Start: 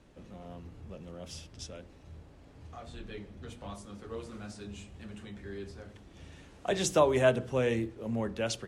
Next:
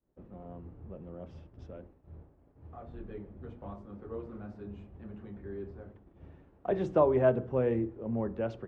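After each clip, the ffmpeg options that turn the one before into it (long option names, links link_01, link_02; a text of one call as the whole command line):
ffmpeg -i in.wav -af "lowpass=1100,equalizer=frequency=360:width=5.4:gain=3.5,agate=range=-33dB:threshold=-47dB:ratio=3:detection=peak" out.wav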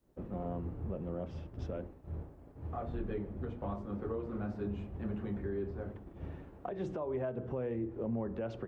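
ffmpeg -i in.wav -af "acompressor=threshold=-33dB:ratio=6,alimiter=level_in=12.5dB:limit=-24dB:level=0:latency=1:release=412,volume=-12.5dB,volume=8.5dB" out.wav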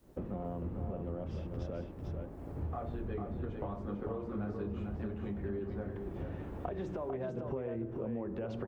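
ffmpeg -i in.wav -af "acompressor=threshold=-48dB:ratio=5,aecho=1:1:447:0.531,volume=10.5dB" out.wav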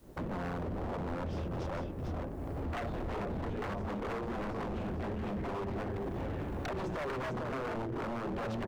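ffmpeg -i in.wav -af "aeval=exprs='0.0126*(abs(mod(val(0)/0.0126+3,4)-2)-1)':channel_layout=same,volume=6.5dB" out.wav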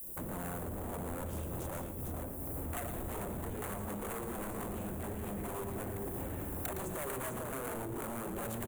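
ffmpeg -i in.wav -af "aexciter=amount=14.7:drive=9:freq=7900,aecho=1:1:113:0.355,volume=-4dB" out.wav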